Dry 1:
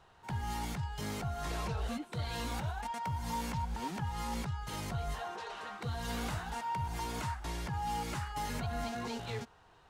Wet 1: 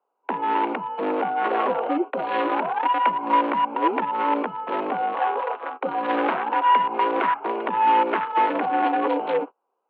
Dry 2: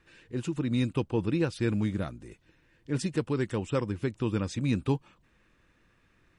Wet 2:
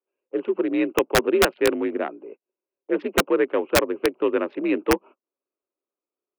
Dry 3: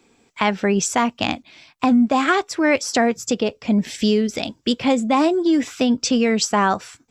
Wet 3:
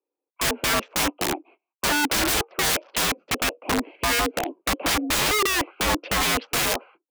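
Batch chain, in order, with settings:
adaptive Wiener filter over 25 samples
noise gate −47 dBFS, range −30 dB
single-sideband voice off tune +53 Hz 280–2,800 Hz
wrap-around overflow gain 21 dB
loudness normalisation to −23 LKFS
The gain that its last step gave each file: +21.0, +11.5, +4.0 decibels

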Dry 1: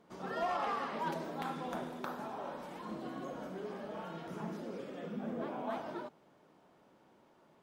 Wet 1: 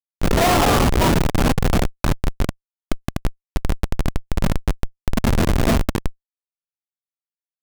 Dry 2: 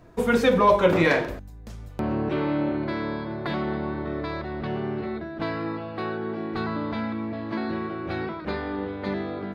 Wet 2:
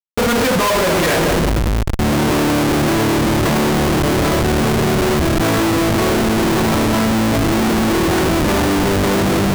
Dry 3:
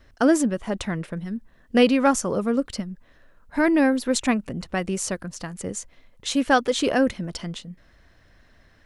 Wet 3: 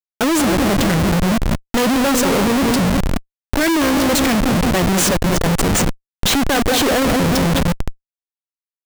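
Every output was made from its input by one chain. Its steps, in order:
feedback echo with a low-pass in the loop 184 ms, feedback 53%, low-pass 1,100 Hz, level −8.5 dB
comparator with hysteresis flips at −33.5 dBFS
normalise the peak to −9 dBFS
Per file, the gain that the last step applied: +26.0, +11.0, +8.5 decibels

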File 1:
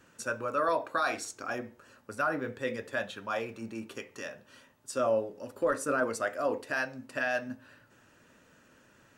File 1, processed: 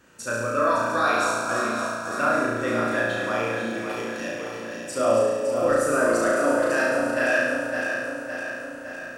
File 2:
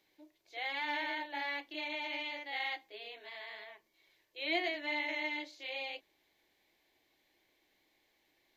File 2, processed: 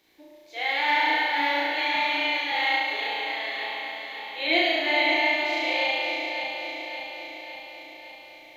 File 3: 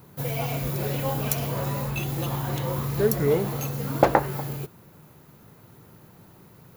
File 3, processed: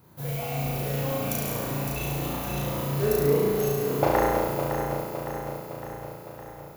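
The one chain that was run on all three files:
feedback delay that plays each chunk backwards 280 ms, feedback 77%, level −6 dB
flutter between parallel walls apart 6 metres, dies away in 1.3 s
normalise the peak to −9 dBFS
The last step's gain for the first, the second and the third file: +2.5, +7.5, −7.0 decibels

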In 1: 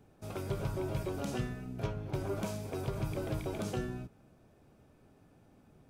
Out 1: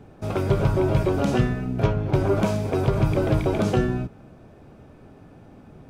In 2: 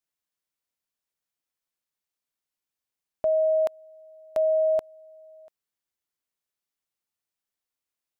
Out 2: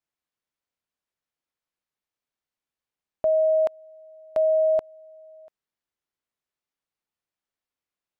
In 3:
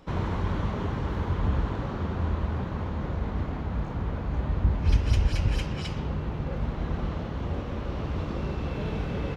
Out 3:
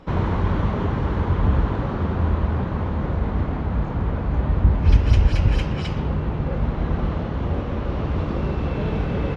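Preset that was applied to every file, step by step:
low-pass filter 2,700 Hz 6 dB per octave
loudness normalisation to −23 LKFS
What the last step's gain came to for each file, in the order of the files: +15.0, +2.0, +7.0 decibels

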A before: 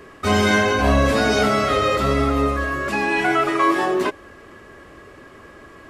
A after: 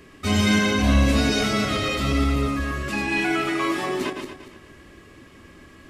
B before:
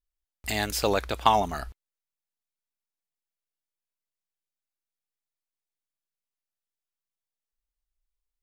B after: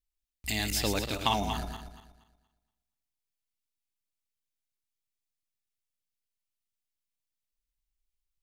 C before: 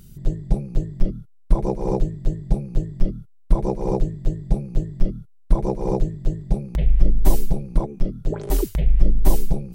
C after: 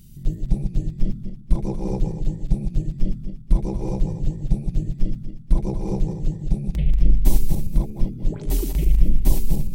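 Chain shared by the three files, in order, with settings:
feedback delay that plays each chunk backwards 118 ms, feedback 52%, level −6 dB
flat-topped bell 810 Hz −8.5 dB 2.4 octaves
level −1 dB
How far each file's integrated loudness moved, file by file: −3.0, −5.0, −0.5 LU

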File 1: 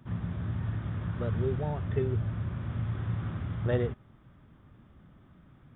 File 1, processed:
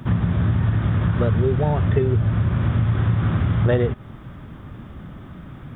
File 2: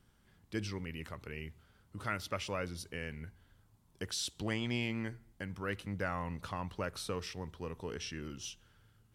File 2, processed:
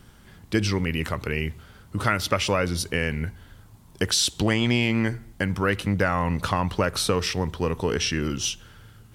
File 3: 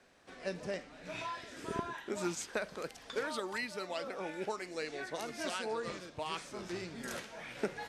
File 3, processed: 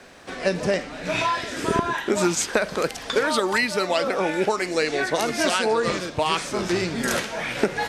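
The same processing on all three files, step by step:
downward compressor 4 to 1, threshold −35 dBFS
normalise the peak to −6 dBFS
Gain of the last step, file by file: +18.5, +17.5, +18.0 decibels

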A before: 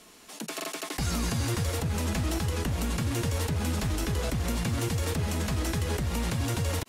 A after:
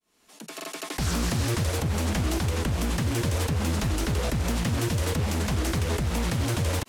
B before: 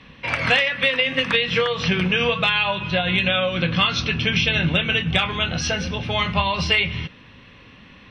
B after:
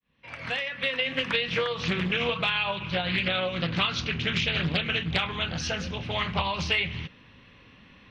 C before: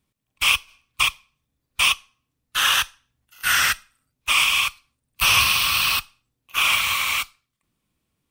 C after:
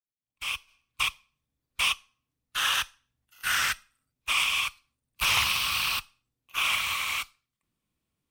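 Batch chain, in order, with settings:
fade in at the beginning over 1.08 s
highs frequency-modulated by the lows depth 0.48 ms
loudness normalisation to −27 LKFS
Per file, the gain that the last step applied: +3.0, −7.0, −7.0 decibels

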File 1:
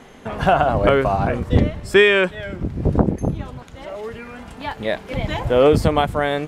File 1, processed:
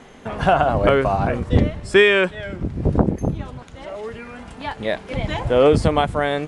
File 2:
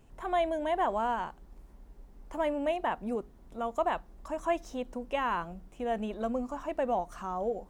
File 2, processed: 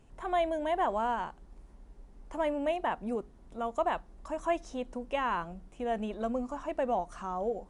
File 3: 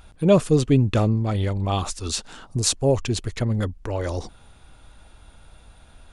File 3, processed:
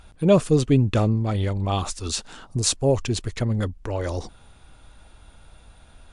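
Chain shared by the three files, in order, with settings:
MP3 96 kbit/s 24,000 Hz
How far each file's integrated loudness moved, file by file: −0.5, −0.5, −0.5 LU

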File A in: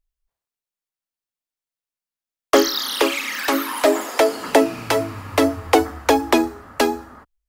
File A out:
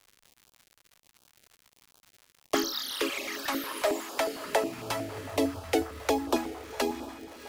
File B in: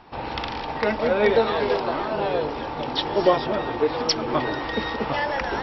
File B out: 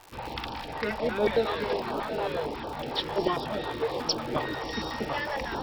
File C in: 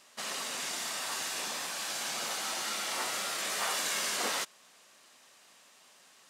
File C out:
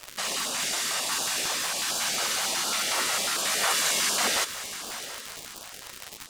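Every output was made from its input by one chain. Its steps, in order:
feedback delay with all-pass diffusion 705 ms, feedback 40%, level −12 dB
surface crackle 150 per second −31 dBFS
notch on a step sequencer 11 Hz 210–2,000 Hz
normalise the peak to −12 dBFS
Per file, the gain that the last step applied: −9.5, −4.5, +8.0 decibels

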